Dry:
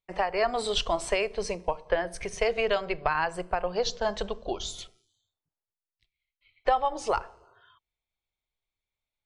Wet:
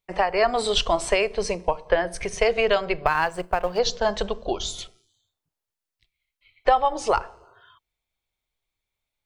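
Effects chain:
0:03.06–0:03.79: mu-law and A-law mismatch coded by A
level +5.5 dB

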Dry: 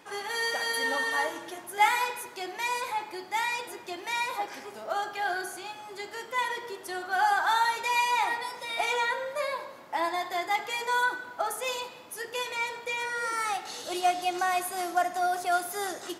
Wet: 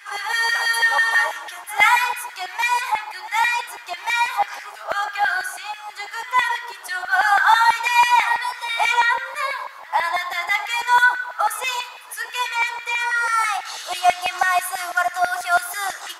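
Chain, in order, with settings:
echo ahead of the sound 106 ms −19.5 dB
auto-filter high-pass saw down 6.1 Hz 780–2,000 Hz
level +6.5 dB

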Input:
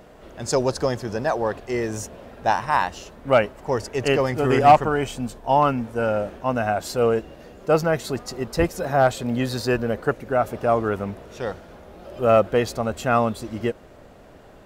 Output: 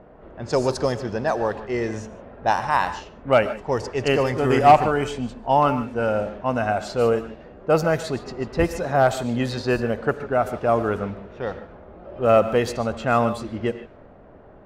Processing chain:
reverb whose tail is shaped and stops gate 170 ms rising, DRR 11.5 dB
low-pass that shuts in the quiet parts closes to 1,300 Hz, open at −17 dBFS

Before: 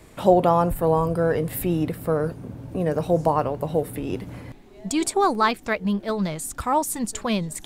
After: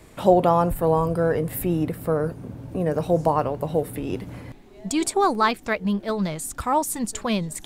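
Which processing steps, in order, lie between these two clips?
0:01.28–0:02.94: dynamic equaliser 3,800 Hz, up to −4 dB, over −46 dBFS, Q 0.96

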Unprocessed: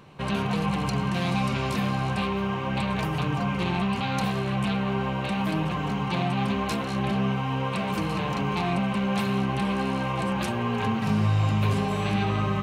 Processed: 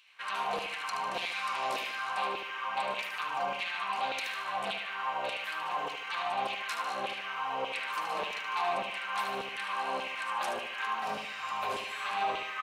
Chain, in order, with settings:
auto-filter high-pass saw down 1.7 Hz 510–2,900 Hz
repeating echo 75 ms, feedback 46%, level −7 dB
level −6 dB

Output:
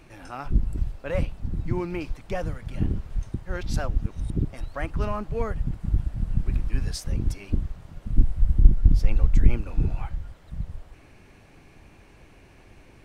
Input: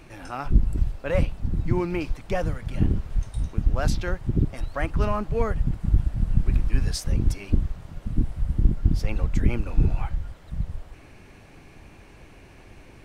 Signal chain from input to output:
0:03.34–0:04.30: reverse
0:08.10–0:09.57: low-shelf EQ 67 Hz +12 dB
level −3.5 dB

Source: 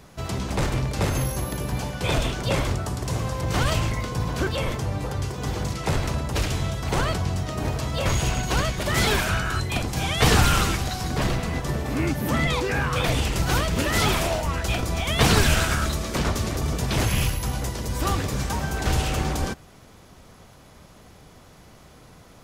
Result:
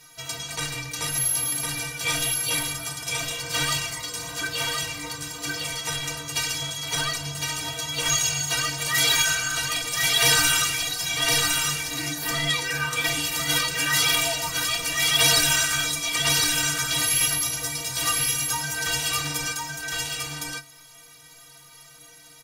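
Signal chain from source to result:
tilt shelving filter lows −10 dB, about 1,100 Hz
stiff-string resonator 140 Hz, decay 0.35 s, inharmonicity 0.03
on a send: single-tap delay 1,059 ms −3 dB
on the sum: level +8.5 dB

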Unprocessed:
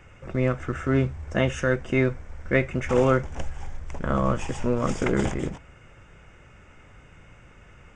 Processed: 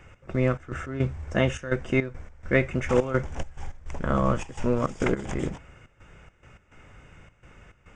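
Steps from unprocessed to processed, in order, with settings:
gate pattern "x.xx.x.xxx" 105 BPM −12 dB

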